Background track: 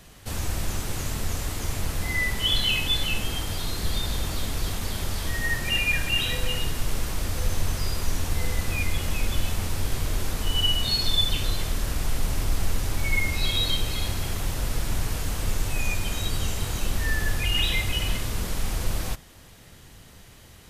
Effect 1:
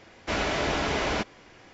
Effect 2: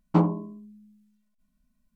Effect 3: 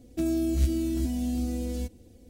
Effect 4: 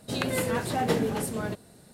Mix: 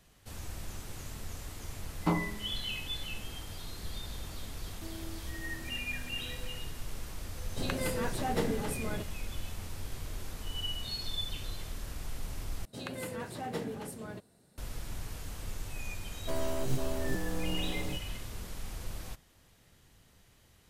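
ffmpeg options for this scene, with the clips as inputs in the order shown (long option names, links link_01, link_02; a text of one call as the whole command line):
ffmpeg -i bed.wav -i cue0.wav -i cue1.wav -i cue2.wav -i cue3.wav -filter_complex "[3:a]asplit=2[link_01][link_02];[4:a]asplit=2[link_03][link_04];[0:a]volume=-13.5dB[link_05];[2:a]tiltshelf=frequency=1100:gain=-6[link_06];[link_01]equalizer=frequency=120:width_type=o:width=2.7:gain=-11.5[link_07];[link_02]aeval=exprs='abs(val(0))':channel_layout=same[link_08];[link_05]asplit=2[link_09][link_10];[link_09]atrim=end=12.654[link_11];[link_04]atrim=end=1.93,asetpts=PTS-STARTPTS,volume=-11.5dB[link_12];[link_10]atrim=start=14.576[link_13];[link_06]atrim=end=1.95,asetpts=PTS-STARTPTS,volume=-4dB,afade=type=in:duration=0.004:curve=hsin,afade=type=out:start_time=1.946:duration=0.004:curve=hsin,adelay=1920[link_14];[link_07]atrim=end=2.29,asetpts=PTS-STARTPTS,volume=-15dB,afade=type=in:duration=0.004:curve=hsin,afade=type=out:start_time=2.286:duration=0.004:curve=hsin,adelay=4640[link_15];[link_03]atrim=end=1.93,asetpts=PTS-STARTPTS,volume=-6dB,afade=type=in:duration=0.004:curve=hsin,afade=type=out:start_time=1.926:duration=0.004:curve=hsin,adelay=7480[link_16];[link_08]atrim=end=2.29,asetpts=PTS-STARTPTS,volume=-3.5dB,afade=type=in:duration=0.004:curve=hsin,afade=type=out:start_time=2.286:duration=0.004:curve=hsin,adelay=16100[link_17];[link_11][link_12]acrossfade=duration=0.004:curve1=hsin:curve2=hsin[link_18];[link_18][link_13]acrossfade=duration=0.004:curve1=hsin:curve2=hsin[link_19];[link_19][link_14][link_15][link_16][link_17]amix=inputs=5:normalize=0" out.wav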